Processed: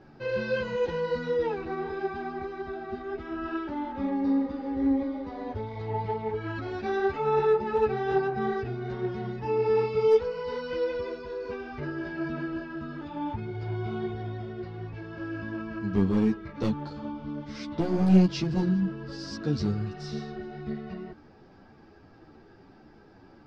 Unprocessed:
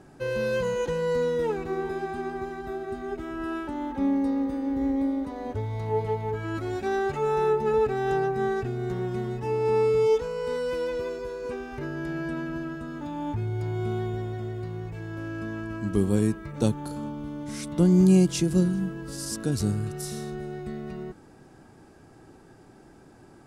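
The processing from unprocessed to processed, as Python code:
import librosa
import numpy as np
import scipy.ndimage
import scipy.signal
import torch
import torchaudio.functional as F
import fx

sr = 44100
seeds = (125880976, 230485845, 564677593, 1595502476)

y = scipy.signal.sosfilt(scipy.signal.cheby1(4, 1.0, 5100.0, 'lowpass', fs=sr, output='sos'), x)
y = np.clip(10.0 ** (17.0 / 20.0) * y, -1.0, 1.0) / 10.0 ** (17.0 / 20.0)
y = fx.ensemble(y, sr)
y = y * librosa.db_to_amplitude(2.5)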